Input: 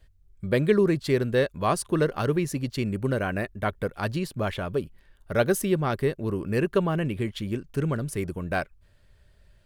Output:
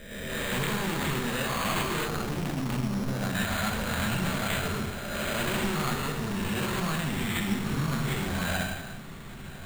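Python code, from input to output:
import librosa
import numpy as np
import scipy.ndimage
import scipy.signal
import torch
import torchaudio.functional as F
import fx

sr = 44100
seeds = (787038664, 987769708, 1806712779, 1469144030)

p1 = fx.spec_swells(x, sr, rise_s=1.18)
p2 = fx.level_steps(p1, sr, step_db=10)
p3 = p1 + (p2 * 10.0 ** (1.0 / 20.0))
p4 = fx.peak_eq(p3, sr, hz=11000.0, db=-15.0, octaves=0.35)
p5 = fx.hum_notches(p4, sr, base_hz=50, count=3)
p6 = fx.small_body(p5, sr, hz=(220.0, 3700.0), ring_ms=45, db=8)
p7 = 10.0 ** (-22.0 / 20.0) * np.tanh(p6 / 10.0 ** (-22.0 / 20.0))
p8 = fx.peak_eq(p7, sr, hz=410.0, db=-14.5, octaves=2.2)
p9 = fx.echo_diffused(p8, sr, ms=1159, feedback_pct=43, wet_db=-14.5)
p10 = fx.rev_gated(p9, sr, seeds[0], gate_ms=460, shape='falling', drr_db=0.0)
p11 = np.repeat(p10[::8], 8)[:len(p10)]
y = fx.backlash(p11, sr, play_db=-29.0, at=(2.08, 3.35))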